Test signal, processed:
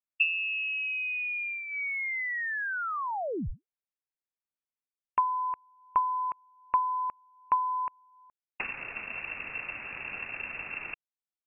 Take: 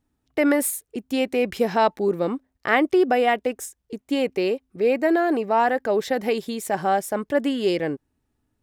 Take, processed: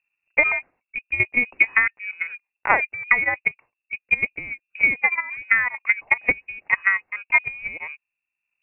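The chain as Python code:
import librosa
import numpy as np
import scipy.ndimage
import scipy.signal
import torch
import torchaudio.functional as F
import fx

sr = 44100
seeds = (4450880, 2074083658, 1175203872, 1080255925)

p1 = fx.dynamic_eq(x, sr, hz=370.0, q=4.7, threshold_db=-39.0, ratio=4.0, max_db=-7)
p2 = fx.level_steps(p1, sr, step_db=21)
p3 = p1 + (p2 * librosa.db_to_amplitude(2.0))
p4 = fx.transient(p3, sr, attack_db=11, sustain_db=-5)
p5 = fx.freq_invert(p4, sr, carrier_hz=2700)
y = p5 * librosa.db_to_amplitude(-10.0)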